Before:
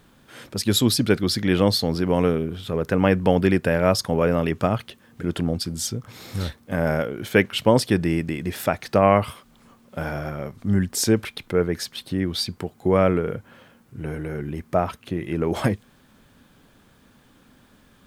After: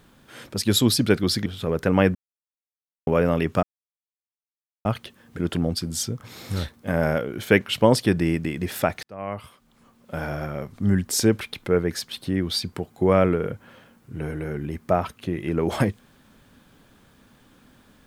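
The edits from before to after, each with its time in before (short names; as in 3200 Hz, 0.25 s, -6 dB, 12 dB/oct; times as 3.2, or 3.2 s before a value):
1.46–2.52 cut
3.21–4.13 mute
4.69 insert silence 1.22 s
8.87–10.23 fade in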